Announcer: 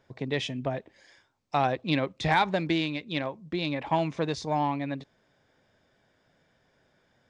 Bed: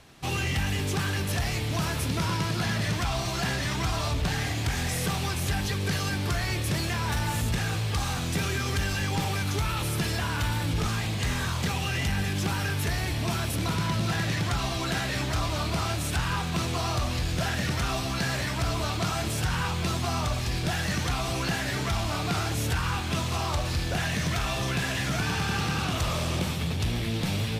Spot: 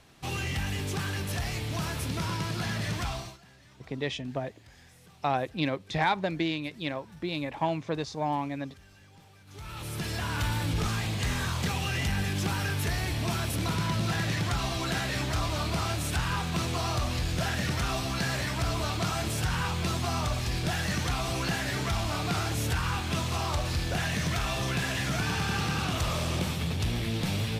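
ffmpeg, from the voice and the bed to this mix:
ffmpeg -i stem1.wav -i stem2.wav -filter_complex "[0:a]adelay=3700,volume=-2.5dB[link_01];[1:a]volume=22dB,afade=type=out:start_time=3.07:duration=0.31:silence=0.0668344,afade=type=in:start_time=9.46:duration=0.96:silence=0.0501187[link_02];[link_01][link_02]amix=inputs=2:normalize=0" out.wav

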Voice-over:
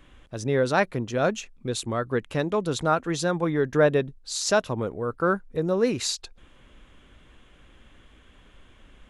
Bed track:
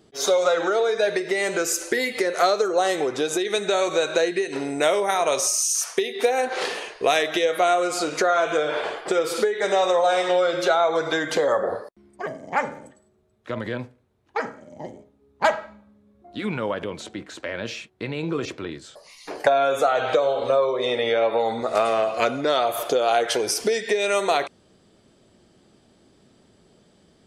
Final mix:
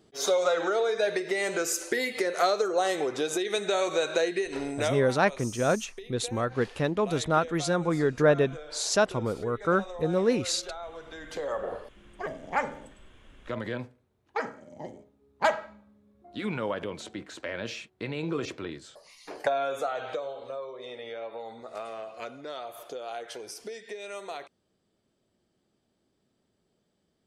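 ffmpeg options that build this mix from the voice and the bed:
ffmpeg -i stem1.wav -i stem2.wav -filter_complex "[0:a]adelay=4450,volume=-1.5dB[link_01];[1:a]volume=11dB,afade=type=out:start_time=4.67:duration=0.48:silence=0.16788,afade=type=in:start_time=11.15:duration=0.98:silence=0.158489,afade=type=out:start_time=18.66:duration=1.8:silence=0.223872[link_02];[link_01][link_02]amix=inputs=2:normalize=0" out.wav

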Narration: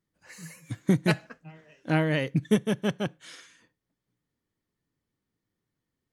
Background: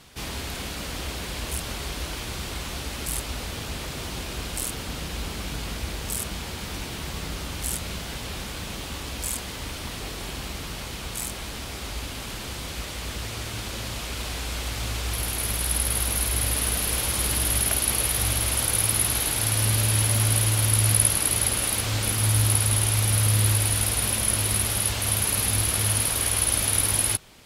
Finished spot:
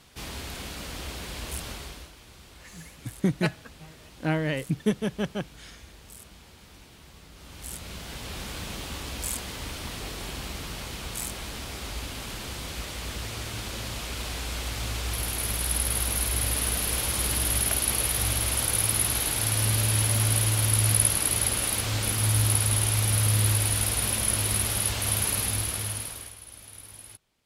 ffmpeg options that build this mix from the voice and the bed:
ffmpeg -i stem1.wav -i stem2.wav -filter_complex "[0:a]adelay=2350,volume=-2dB[link_01];[1:a]volume=11dB,afade=type=out:start_time=1.67:duration=0.45:silence=0.223872,afade=type=in:start_time=7.33:duration=1.2:silence=0.16788,afade=type=out:start_time=25.25:duration=1.11:silence=0.0891251[link_02];[link_01][link_02]amix=inputs=2:normalize=0" out.wav

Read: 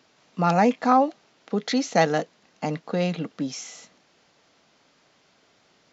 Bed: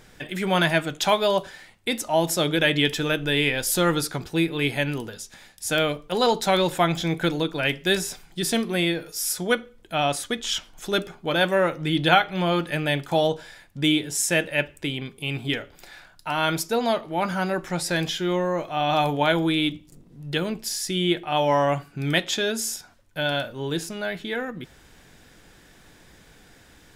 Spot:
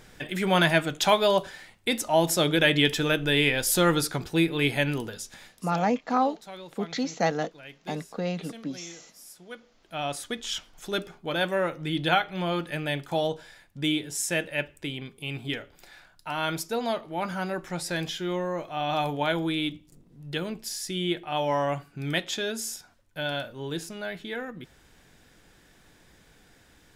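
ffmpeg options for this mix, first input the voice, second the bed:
ffmpeg -i stem1.wav -i stem2.wav -filter_complex "[0:a]adelay=5250,volume=-5.5dB[link_01];[1:a]volume=15.5dB,afade=type=out:start_time=5.46:duration=0.2:silence=0.0891251,afade=type=in:start_time=9.5:duration=0.78:silence=0.158489[link_02];[link_01][link_02]amix=inputs=2:normalize=0" out.wav

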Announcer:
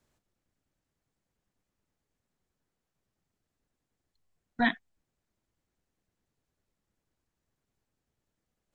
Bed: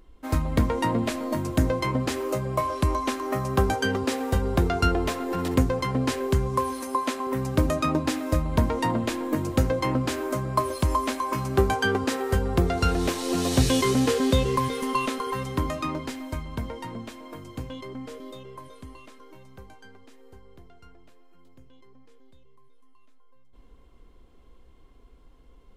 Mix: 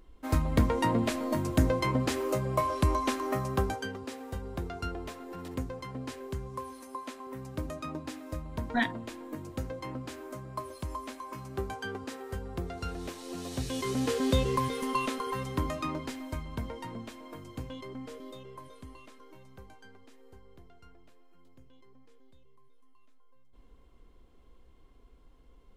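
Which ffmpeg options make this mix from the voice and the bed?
ffmpeg -i stem1.wav -i stem2.wav -filter_complex "[0:a]adelay=4150,volume=-2dB[link_01];[1:a]volume=7dB,afade=type=out:start_time=3.23:duration=0.7:silence=0.266073,afade=type=in:start_time=13.68:duration=0.67:silence=0.334965[link_02];[link_01][link_02]amix=inputs=2:normalize=0" out.wav

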